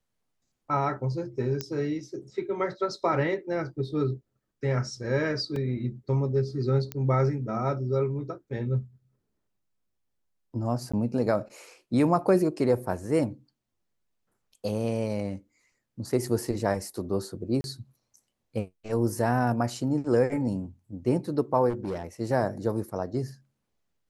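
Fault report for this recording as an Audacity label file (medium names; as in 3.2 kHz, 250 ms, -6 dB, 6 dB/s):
1.610000	1.610000	pop -15 dBFS
5.560000	5.560000	dropout 2.4 ms
6.920000	6.920000	pop -17 dBFS
10.920000	10.940000	dropout 15 ms
17.610000	17.640000	dropout 31 ms
21.690000	22.050000	clipped -27 dBFS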